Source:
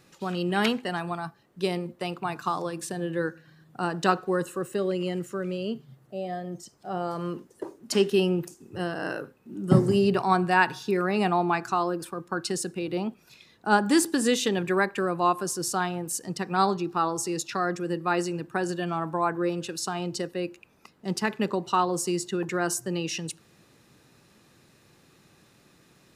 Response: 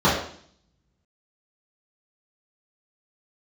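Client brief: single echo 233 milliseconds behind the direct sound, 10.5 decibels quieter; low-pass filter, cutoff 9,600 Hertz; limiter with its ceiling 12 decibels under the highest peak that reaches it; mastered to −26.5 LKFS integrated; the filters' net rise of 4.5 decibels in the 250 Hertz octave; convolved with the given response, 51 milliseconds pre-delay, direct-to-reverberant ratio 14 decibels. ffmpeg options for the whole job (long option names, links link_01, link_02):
-filter_complex "[0:a]lowpass=9600,equalizer=frequency=250:width_type=o:gain=7,alimiter=limit=-14.5dB:level=0:latency=1,aecho=1:1:233:0.299,asplit=2[link_01][link_02];[1:a]atrim=start_sample=2205,adelay=51[link_03];[link_02][link_03]afir=irnorm=-1:irlink=0,volume=-35.5dB[link_04];[link_01][link_04]amix=inputs=2:normalize=0"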